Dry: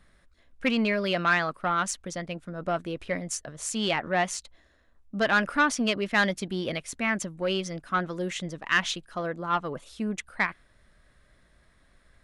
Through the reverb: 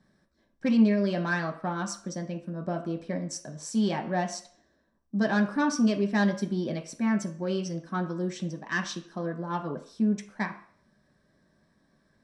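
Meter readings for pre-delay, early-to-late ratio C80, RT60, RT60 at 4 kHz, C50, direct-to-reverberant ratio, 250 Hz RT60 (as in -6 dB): 3 ms, 15.0 dB, 0.55 s, 0.50 s, 12.0 dB, 2.5 dB, 0.40 s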